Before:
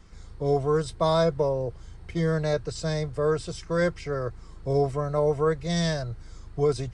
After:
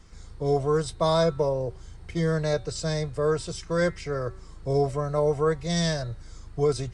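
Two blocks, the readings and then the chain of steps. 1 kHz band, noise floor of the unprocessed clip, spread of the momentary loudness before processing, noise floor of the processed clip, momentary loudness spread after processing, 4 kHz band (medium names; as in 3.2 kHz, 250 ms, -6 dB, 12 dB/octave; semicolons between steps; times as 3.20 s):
0.0 dB, -46 dBFS, 11 LU, -45 dBFS, 11 LU, +2.0 dB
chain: peaking EQ 8 kHz +4 dB 1.7 oct; de-hum 189.5 Hz, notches 22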